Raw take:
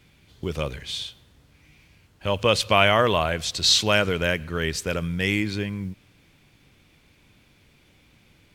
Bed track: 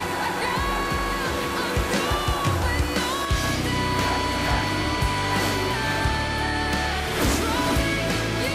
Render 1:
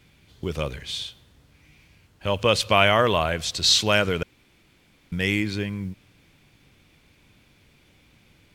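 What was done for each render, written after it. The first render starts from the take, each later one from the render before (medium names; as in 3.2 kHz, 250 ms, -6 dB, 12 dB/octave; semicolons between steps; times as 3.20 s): 4.23–5.12 s: room tone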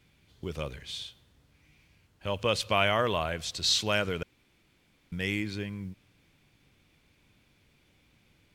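trim -7.5 dB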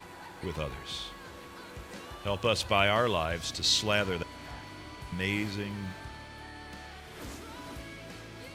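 add bed track -21 dB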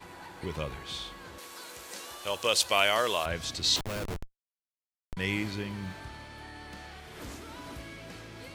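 1.38–3.26 s: tone controls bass -15 dB, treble +12 dB; 3.76–5.17 s: Schmitt trigger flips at -28.5 dBFS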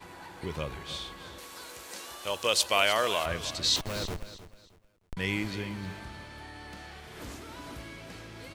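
feedback delay 310 ms, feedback 28%, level -14 dB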